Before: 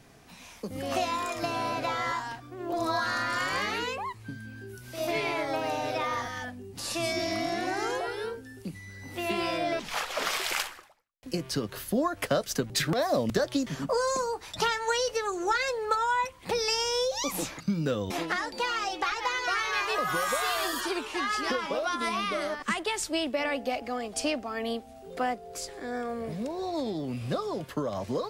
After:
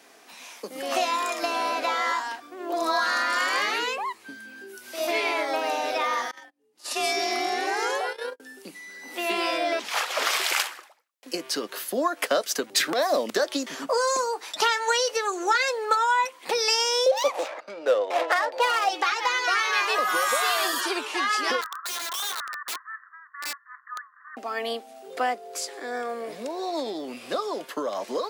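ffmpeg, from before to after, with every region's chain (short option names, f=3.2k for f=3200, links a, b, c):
-filter_complex "[0:a]asettb=1/sr,asplit=3[a][b][c];[a]atrim=end=6.314[d];[b]atrim=start=6.31:end=8.4,asetpts=PTS-STARTPTS,afade=t=in:d=0.004:c=qsin,afade=t=out:st=2.086:d=0.004:c=qsin,agate=range=-43dB:threshold=-35dB:ratio=16:release=100:detection=peak,acompressor=mode=upward:threshold=-51dB:ratio=2.5:attack=3.2:release=140:knee=2.83:detection=peak,afreqshift=42[e];[c]atrim=start=8.396[f];[d][e]acrossfade=d=0.004:c1=hsin:c2=qsin[g];[g][f]acrossfade=d=0.004:c1=qsin:c2=hsin,asettb=1/sr,asplit=3[h][i][j];[h]atrim=end=17.064[k];[i]atrim=start=17.06:end=18.89,asetpts=PTS-STARTPTS,afade=t=in:d=0.004:c=qsin,afade=t=out:st=1.826:d=0.004:c=qsin,adynamicsmooth=sensitivity=6.5:basefreq=1.4k,highpass=f=580:t=q:w=3.6[l];[j]atrim=start=18.886[m];[k][l]acrossfade=d=0.004:c1=hsin:c2=qsin[n];[n][m]acrossfade=d=0.004:c1=qsin:c2=hsin,asettb=1/sr,asplit=3[o][p][q];[o]atrim=end=21.614[r];[p]atrim=start=21.61:end=24.37,asetpts=PTS-STARTPTS,afade=t=in:d=0.004:c=qsin,afade=t=out:st=2.756:d=0.004:c=qsin,asuperpass=centerf=1400:order=20:qfactor=1.6,aeval=exprs='(mod(39.8*val(0)+1,2)-1)/39.8':c=same[s];[q]atrim=start=24.366[t];[r][s]acrossfade=d=0.004:c1=hsin:c2=qsin[u];[u][t]acrossfade=d=0.004:c1=qsin:c2=hsin,highpass=f=260:w=0.5412,highpass=f=260:w=1.3066,lowshelf=f=350:g=-9.5,acontrast=47"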